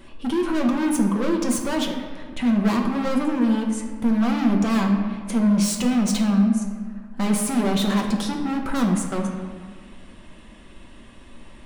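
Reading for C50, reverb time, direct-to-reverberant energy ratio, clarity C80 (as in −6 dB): 5.0 dB, 1.7 s, 1.0 dB, 6.5 dB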